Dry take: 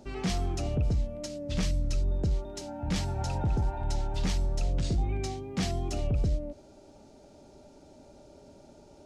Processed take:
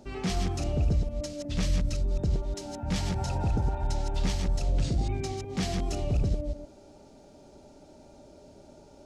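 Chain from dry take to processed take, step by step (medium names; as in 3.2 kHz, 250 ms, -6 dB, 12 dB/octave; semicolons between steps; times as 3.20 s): chunks repeated in reverse 121 ms, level -5 dB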